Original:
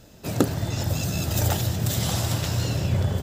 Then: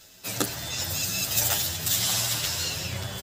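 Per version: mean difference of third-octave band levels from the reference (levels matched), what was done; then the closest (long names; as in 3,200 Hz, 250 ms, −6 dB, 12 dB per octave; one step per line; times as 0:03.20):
7.0 dB: tilt shelving filter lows −9.5 dB
reversed playback
upward compression, threshold −37 dBFS
reversed playback
barber-pole flanger 9.2 ms +1.1 Hz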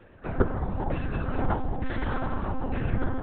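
13.0 dB: on a send: bucket-brigade delay 107 ms, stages 1,024, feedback 47%, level −18 dB
on the sum: auto-filter low-pass saw down 1.1 Hz 890–1,900 Hz
one-pitch LPC vocoder at 8 kHz 260 Hz
level −2.5 dB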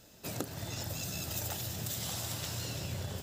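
4.5 dB: spectral tilt +1.5 dB per octave
downward compressor 3 to 1, threshold −29 dBFS, peak gain reduction 10 dB
on a send: delay with a high-pass on its return 331 ms, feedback 63%, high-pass 1,800 Hz, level −10.5 dB
on the sum: level −7 dB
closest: third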